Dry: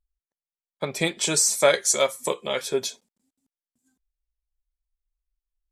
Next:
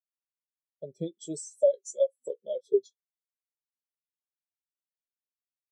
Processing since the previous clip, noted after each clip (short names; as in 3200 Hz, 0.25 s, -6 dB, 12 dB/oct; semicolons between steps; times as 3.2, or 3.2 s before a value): band shelf 1600 Hz -12 dB; compressor 16:1, threshold -22 dBFS, peak gain reduction 9.5 dB; spectral expander 2.5:1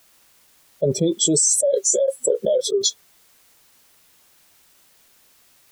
fast leveller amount 100%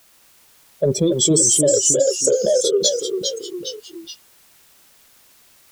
in parallel at -9.5 dB: soft clip -15 dBFS, distortion -15 dB; on the sum: echoes that change speed 0.233 s, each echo -1 st, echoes 3, each echo -6 dB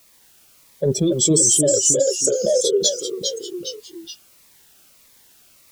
cascading phaser falling 1.6 Hz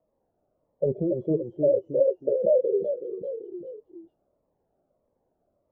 ladder low-pass 700 Hz, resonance 55%